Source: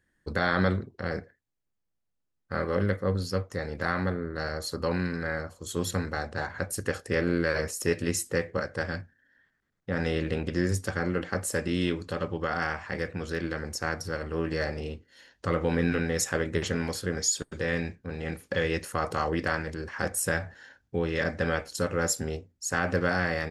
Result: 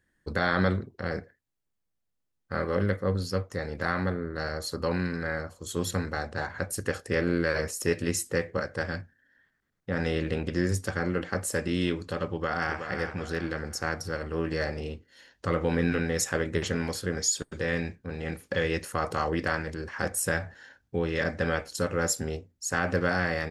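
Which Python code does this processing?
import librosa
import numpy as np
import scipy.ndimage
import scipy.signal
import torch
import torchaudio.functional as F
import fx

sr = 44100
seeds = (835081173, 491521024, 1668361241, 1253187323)

y = fx.echo_throw(x, sr, start_s=12.29, length_s=0.59, ms=370, feedback_pct=40, wet_db=-8.0)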